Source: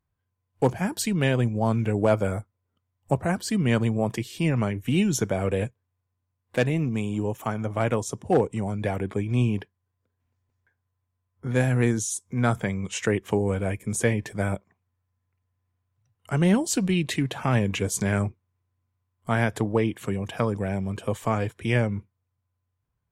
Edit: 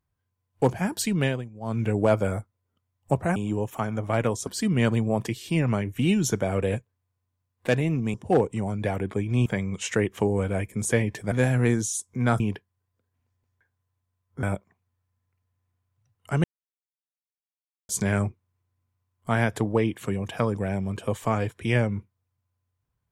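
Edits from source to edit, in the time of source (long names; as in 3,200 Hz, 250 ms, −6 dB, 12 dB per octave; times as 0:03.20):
0:01.21–0:01.84: duck −16.5 dB, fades 0.24 s
0:07.03–0:08.14: move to 0:03.36
0:09.46–0:11.49: swap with 0:12.57–0:14.43
0:16.44–0:17.89: silence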